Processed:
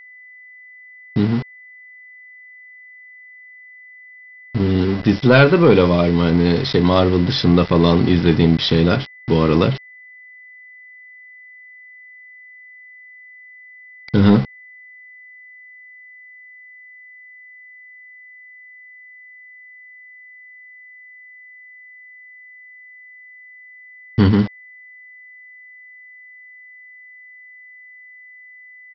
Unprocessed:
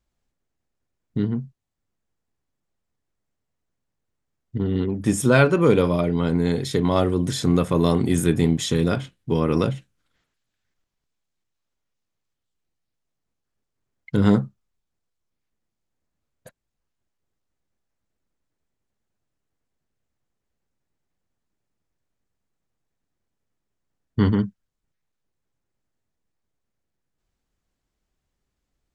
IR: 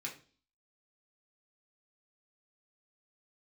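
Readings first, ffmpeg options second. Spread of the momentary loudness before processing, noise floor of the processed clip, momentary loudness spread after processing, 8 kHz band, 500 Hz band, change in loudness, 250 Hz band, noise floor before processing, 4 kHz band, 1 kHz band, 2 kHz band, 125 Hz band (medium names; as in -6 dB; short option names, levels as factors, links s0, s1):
11 LU, -43 dBFS, 10 LU, under -10 dB, +5.5 dB, +5.5 dB, +5.5 dB, -80 dBFS, +9.5 dB, +6.0 dB, +7.5 dB, +5.5 dB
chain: -af "aemphasis=mode=production:type=50fm,acontrast=87,aresample=11025,aeval=exprs='val(0)*gte(abs(val(0)),0.0562)':c=same,aresample=44100,aeval=exprs='val(0)+0.01*sin(2*PI*2000*n/s)':c=same"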